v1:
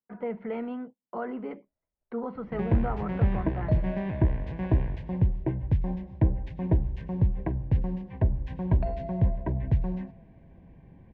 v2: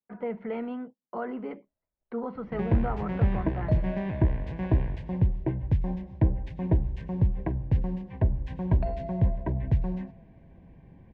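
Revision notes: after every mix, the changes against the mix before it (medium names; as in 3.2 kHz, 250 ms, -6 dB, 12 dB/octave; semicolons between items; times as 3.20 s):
master: remove distance through air 54 m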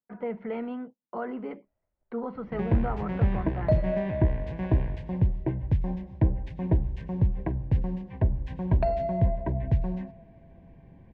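second sound +8.5 dB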